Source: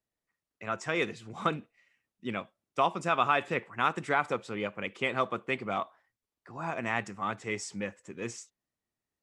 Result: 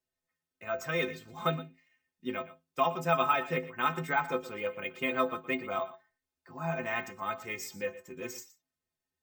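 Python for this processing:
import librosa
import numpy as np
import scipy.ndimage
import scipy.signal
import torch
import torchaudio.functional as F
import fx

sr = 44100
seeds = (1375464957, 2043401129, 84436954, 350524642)

p1 = fx.stiff_resonator(x, sr, f0_hz=77.0, decay_s=0.34, stiffness=0.03)
p2 = p1 + fx.echo_single(p1, sr, ms=118, db=-16.0, dry=0)
p3 = np.repeat(p2[::2], 2)[:len(p2)]
y = p3 * librosa.db_to_amplitude(7.5)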